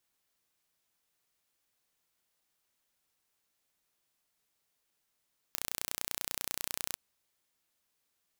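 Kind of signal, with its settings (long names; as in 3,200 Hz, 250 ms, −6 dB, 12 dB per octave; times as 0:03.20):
impulse train 30.2 per second, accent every 0, −7.5 dBFS 1.42 s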